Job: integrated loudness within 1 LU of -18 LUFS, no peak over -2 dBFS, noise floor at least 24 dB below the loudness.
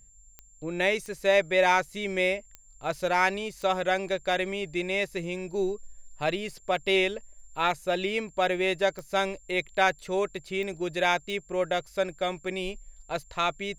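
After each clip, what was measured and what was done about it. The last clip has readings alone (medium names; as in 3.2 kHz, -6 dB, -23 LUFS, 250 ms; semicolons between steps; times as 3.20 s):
clicks found 7; steady tone 7.3 kHz; tone level -56 dBFS; loudness -28.0 LUFS; peak level -9.0 dBFS; loudness target -18.0 LUFS
-> de-click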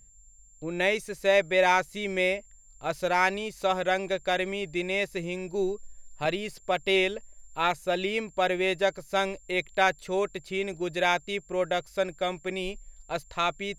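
clicks found 0; steady tone 7.3 kHz; tone level -56 dBFS
-> band-stop 7.3 kHz, Q 30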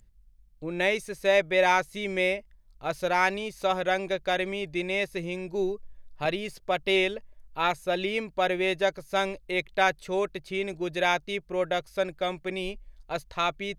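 steady tone not found; loudness -28.0 LUFS; peak level -9.0 dBFS; loudness target -18.0 LUFS
-> trim +10 dB; peak limiter -2 dBFS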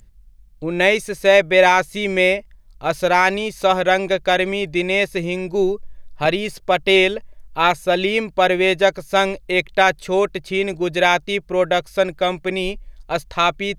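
loudness -18.0 LUFS; peak level -2.0 dBFS; noise floor -47 dBFS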